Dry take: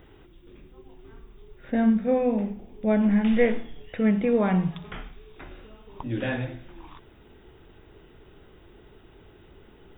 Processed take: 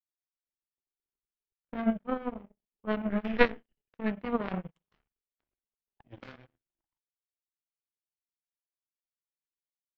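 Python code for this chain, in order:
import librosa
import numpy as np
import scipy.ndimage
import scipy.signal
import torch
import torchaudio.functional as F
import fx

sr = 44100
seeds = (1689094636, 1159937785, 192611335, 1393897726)

y = fx.power_curve(x, sr, exponent=3.0)
y = fx.formant_shift(y, sr, semitones=-2)
y = F.gain(torch.from_numpy(y), 6.0).numpy()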